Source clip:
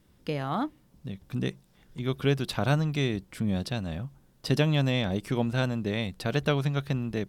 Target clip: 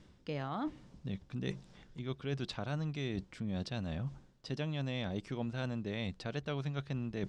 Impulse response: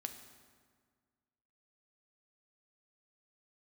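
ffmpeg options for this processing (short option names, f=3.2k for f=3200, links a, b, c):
-af "lowpass=f=7.1k:w=0.5412,lowpass=f=7.1k:w=1.3066,areverse,acompressor=threshold=-42dB:ratio=5,areverse,volume=5.5dB"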